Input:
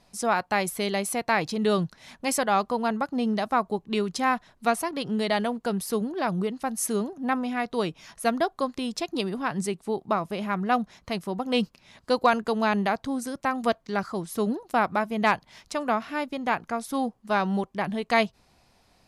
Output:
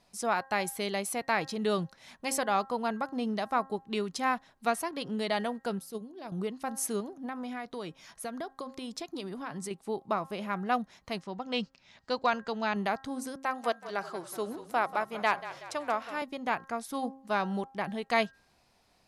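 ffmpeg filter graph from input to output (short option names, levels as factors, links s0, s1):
-filter_complex "[0:a]asettb=1/sr,asplit=3[s0][s1][s2];[s0]atrim=end=5.794[s3];[s1]atrim=start=5.79:end=6.32,asetpts=PTS-STARTPTS,afade=t=in:d=0.004:c=qsin,afade=t=out:st=0.526:d=0.004:c=qsin,agate=range=0.398:threshold=0.0631:ratio=16:release=100:detection=peak,equalizer=f=1400:t=o:w=1.6:g=-9.5,bandreject=f=163.4:t=h:w=4,bandreject=f=326.8:t=h:w=4,bandreject=f=490.2:t=h:w=4[s4];[s2]atrim=start=6.316[s5];[s3][s4]acrossfade=d=0.004:c1=hsin:c2=qsin[s6];[s6][s5]acrossfade=d=0.004:c1=qsin:c2=hsin,asettb=1/sr,asplit=3[s7][s8][s9];[s7]atrim=end=7.004[s10];[s8]atrim=start=7:end=9.71,asetpts=PTS-STARTPTS,afade=t=in:d=0.004:c=qsin,afade=t=out:st=2.706:d=0.004:c=qsin,bandreject=f=2700:w=18,acompressor=threshold=0.0398:ratio=6:attack=3.2:release=140:knee=1:detection=peak[s11];[s9]atrim=start=9.706[s12];[s10][s11]acrossfade=d=0.004:c1=hsin:c2=qsin[s13];[s13][s12]acrossfade=d=0.004:c1=qsin:c2=hsin,asettb=1/sr,asplit=3[s14][s15][s16];[s14]atrim=end=11.204[s17];[s15]atrim=start=11.2:end=12.76,asetpts=PTS-STARTPTS,afade=t=in:d=0.004:c=qsin,afade=t=out:st=1.556:d=0.004:c=qsin,lowpass=f=6900:w=0.5412,lowpass=f=6900:w=1.3066,equalizer=f=370:t=o:w=1.9:g=-4,bandreject=f=1100:w=19[s18];[s16]atrim=start=12.756[s19];[s17][s18]acrossfade=d=0.004:c1=hsin:c2=qsin[s20];[s20][s19]acrossfade=d=0.004:c1=qsin:c2=hsin,asettb=1/sr,asplit=3[s21][s22][s23];[s21]atrim=end=13.434[s24];[s22]atrim=start=13.43:end=16.22,asetpts=PTS-STARTPTS,afade=t=in:d=0.004:c=qsin,afade=t=out:st=2.786:d=0.004:c=qsin,highpass=330,asplit=7[s25][s26][s27][s28][s29][s30][s31];[s26]adelay=187,afreqshift=-32,volume=0.2[s32];[s27]adelay=374,afreqshift=-64,volume=0.112[s33];[s28]adelay=561,afreqshift=-96,volume=0.0624[s34];[s29]adelay=748,afreqshift=-128,volume=0.0351[s35];[s30]adelay=935,afreqshift=-160,volume=0.0197[s36];[s31]adelay=1122,afreqshift=-192,volume=0.011[s37];[s25][s32][s33][s34][s35][s36][s37]amix=inputs=7:normalize=0,atrim=end_sample=123039[s38];[s23]atrim=start=16.216[s39];[s24][s38]acrossfade=d=0.004:c1=hsin:c2=qsin[s40];[s40][s39]acrossfade=d=0.004:c1=qsin:c2=hsin,lowshelf=f=200:g=-5,bandreject=f=267.7:t=h:w=4,bandreject=f=535.4:t=h:w=4,bandreject=f=803.1:t=h:w=4,bandreject=f=1070.8:t=h:w=4,bandreject=f=1338.5:t=h:w=4,bandreject=f=1606.2:t=h:w=4,bandreject=f=1873.9:t=h:w=4,volume=0.596"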